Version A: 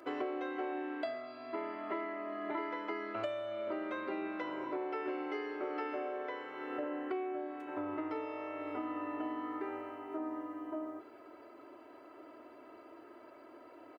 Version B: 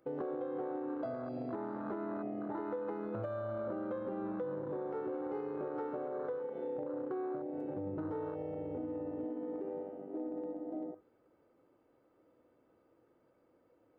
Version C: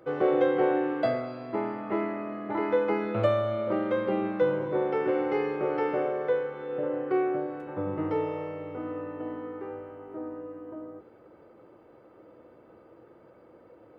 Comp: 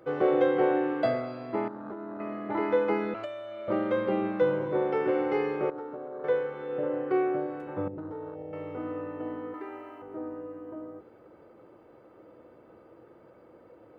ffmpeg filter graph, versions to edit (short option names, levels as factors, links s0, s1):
-filter_complex "[1:a]asplit=3[s0][s1][s2];[0:a]asplit=2[s3][s4];[2:a]asplit=6[s5][s6][s7][s8][s9][s10];[s5]atrim=end=1.682[s11];[s0]atrim=start=1.678:end=2.202[s12];[s6]atrim=start=2.198:end=3.142[s13];[s3]atrim=start=3.138:end=3.682[s14];[s7]atrim=start=3.678:end=5.702[s15];[s1]atrim=start=5.698:end=6.242[s16];[s8]atrim=start=6.238:end=7.882[s17];[s2]atrim=start=7.878:end=8.532[s18];[s9]atrim=start=8.528:end=9.542[s19];[s4]atrim=start=9.538:end=10.022[s20];[s10]atrim=start=10.018[s21];[s11][s12]acrossfade=d=0.004:c1=hsin:c2=hsin[s22];[s22][s13]acrossfade=d=0.004:c1=hsin:c2=hsin[s23];[s23][s14]acrossfade=d=0.004:c1=hsin:c2=hsin[s24];[s24][s15]acrossfade=d=0.004:c1=hsin:c2=hsin[s25];[s25][s16]acrossfade=d=0.004:c1=hsin:c2=hsin[s26];[s26][s17]acrossfade=d=0.004:c1=hsin:c2=hsin[s27];[s27][s18]acrossfade=d=0.004:c1=hsin:c2=hsin[s28];[s28][s19]acrossfade=d=0.004:c1=hsin:c2=hsin[s29];[s29][s20]acrossfade=d=0.004:c1=hsin:c2=hsin[s30];[s30][s21]acrossfade=d=0.004:c1=hsin:c2=hsin"